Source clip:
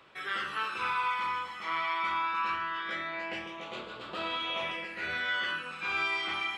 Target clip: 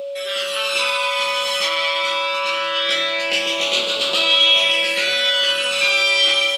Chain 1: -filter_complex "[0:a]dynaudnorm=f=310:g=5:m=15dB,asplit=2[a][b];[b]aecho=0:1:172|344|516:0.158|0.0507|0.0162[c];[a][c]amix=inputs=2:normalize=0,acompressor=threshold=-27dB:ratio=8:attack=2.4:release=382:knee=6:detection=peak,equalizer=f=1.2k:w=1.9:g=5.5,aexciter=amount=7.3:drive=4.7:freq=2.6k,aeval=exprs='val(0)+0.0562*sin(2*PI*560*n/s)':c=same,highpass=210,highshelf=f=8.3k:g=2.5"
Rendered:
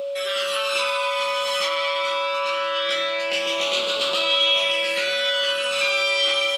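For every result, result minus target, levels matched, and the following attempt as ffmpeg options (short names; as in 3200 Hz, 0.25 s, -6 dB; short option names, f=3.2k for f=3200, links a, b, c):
compressor: peak gain reduction +6 dB; 1000 Hz band +3.0 dB
-filter_complex "[0:a]dynaudnorm=f=310:g=5:m=15dB,asplit=2[a][b];[b]aecho=0:1:172|344|516:0.158|0.0507|0.0162[c];[a][c]amix=inputs=2:normalize=0,acompressor=threshold=-20dB:ratio=8:attack=2.4:release=382:knee=6:detection=peak,equalizer=f=1.2k:w=1.9:g=5.5,aexciter=amount=7.3:drive=4.7:freq=2.6k,aeval=exprs='val(0)+0.0562*sin(2*PI*560*n/s)':c=same,highpass=210,highshelf=f=8.3k:g=2.5"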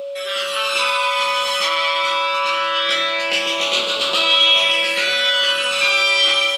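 1000 Hz band +3.5 dB
-filter_complex "[0:a]dynaudnorm=f=310:g=5:m=15dB,asplit=2[a][b];[b]aecho=0:1:172|344|516:0.158|0.0507|0.0162[c];[a][c]amix=inputs=2:normalize=0,acompressor=threshold=-20dB:ratio=8:attack=2.4:release=382:knee=6:detection=peak,aexciter=amount=7.3:drive=4.7:freq=2.6k,aeval=exprs='val(0)+0.0562*sin(2*PI*560*n/s)':c=same,highpass=210,highshelf=f=8.3k:g=2.5"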